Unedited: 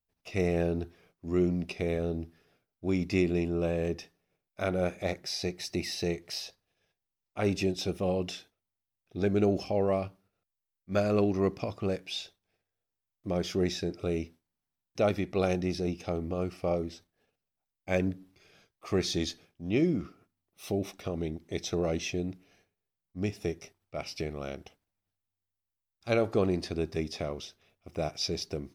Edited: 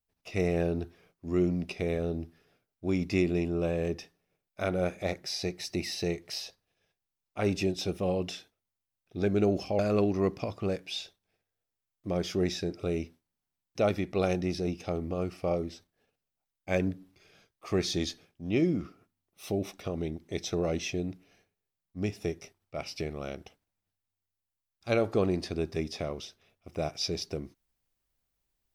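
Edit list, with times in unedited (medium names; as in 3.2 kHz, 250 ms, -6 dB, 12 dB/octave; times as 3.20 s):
9.79–10.99 s: delete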